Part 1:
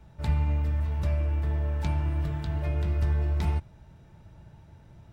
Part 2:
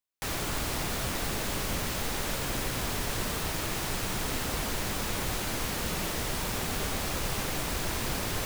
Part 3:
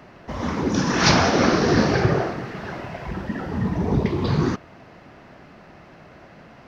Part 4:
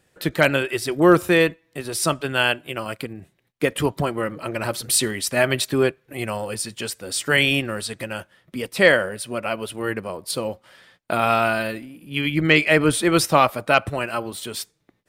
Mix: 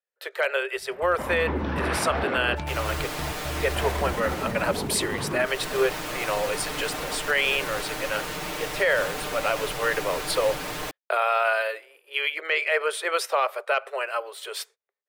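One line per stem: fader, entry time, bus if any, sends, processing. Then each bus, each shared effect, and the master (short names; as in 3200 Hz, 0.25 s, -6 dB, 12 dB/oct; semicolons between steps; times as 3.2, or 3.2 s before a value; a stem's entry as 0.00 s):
-2.0 dB, 0.75 s, no bus, no send, limiter -25 dBFS, peak gain reduction 9.5 dB; AGC gain up to 9 dB; step gate "x.x.xxxx" 111 bpm
-3.0 dB, 2.45 s, bus A, no send, comb 6.6 ms, depth 77%; vibrato 2.3 Hz 7.8 cents
+1.5 dB, 0.90 s, muted 2.55–3.75, bus A, no send, LPF 3400 Hz 24 dB/oct
-3.0 dB, 0.00 s, no bus, no send, gate -44 dBFS, range -25 dB; AGC gain up to 11 dB; rippled Chebyshev high-pass 390 Hz, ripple 3 dB
bus A: 0.0 dB, vocal rider within 4 dB 0.5 s; limiter -17.5 dBFS, peak gain reduction 10 dB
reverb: off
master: tone controls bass -9 dB, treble -6 dB; limiter -12.5 dBFS, peak gain reduction 8 dB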